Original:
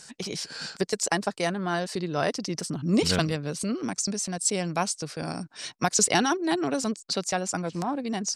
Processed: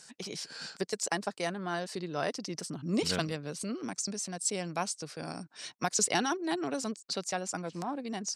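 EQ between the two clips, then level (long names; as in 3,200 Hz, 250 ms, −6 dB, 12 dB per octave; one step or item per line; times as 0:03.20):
high-pass filter 150 Hz 6 dB per octave
−6.0 dB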